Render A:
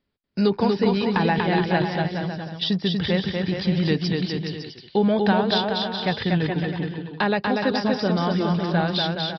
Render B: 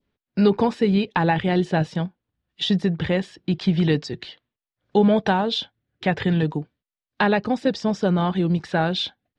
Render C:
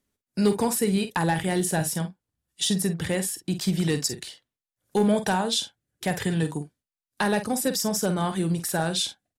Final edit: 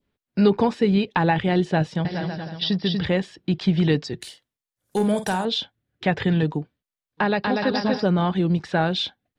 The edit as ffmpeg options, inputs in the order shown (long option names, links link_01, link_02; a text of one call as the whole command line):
ffmpeg -i take0.wav -i take1.wav -i take2.wav -filter_complex "[0:a]asplit=2[link_01][link_02];[1:a]asplit=4[link_03][link_04][link_05][link_06];[link_03]atrim=end=2.052[link_07];[link_01]atrim=start=2.048:end=3.052[link_08];[link_04]atrim=start=3.048:end=4.212[link_09];[2:a]atrim=start=4.208:end=5.452[link_10];[link_05]atrim=start=5.448:end=7.27[link_11];[link_02]atrim=start=7.17:end=8.07[link_12];[link_06]atrim=start=7.97[link_13];[link_07][link_08]acrossfade=duration=0.004:curve1=hsin:curve2=hsin[link_14];[link_14][link_09]acrossfade=duration=0.004:curve1=hsin:curve2=hsin[link_15];[link_15][link_10]acrossfade=duration=0.004:curve1=hsin:curve2=hsin[link_16];[link_16][link_11]acrossfade=duration=0.004:curve1=hsin:curve2=hsin[link_17];[link_17][link_12]acrossfade=duration=0.1:curve1=tri:curve2=tri[link_18];[link_18][link_13]acrossfade=duration=0.1:curve1=tri:curve2=tri" out.wav